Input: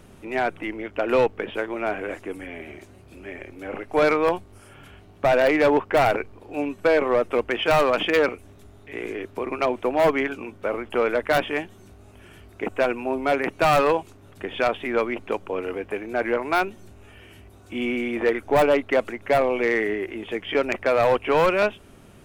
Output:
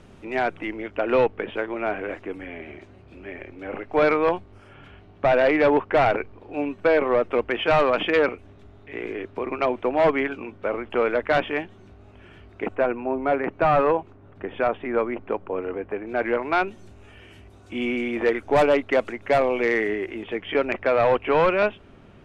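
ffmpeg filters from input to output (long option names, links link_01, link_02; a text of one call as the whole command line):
ffmpeg -i in.wav -af "asetnsamples=nb_out_samples=441:pad=0,asendcmd='0.96 lowpass f 3500;12.75 lowpass f 1700;16.07 lowpass f 3600;16.68 lowpass f 7200;20.23 lowpass f 3300',lowpass=6000" out.wav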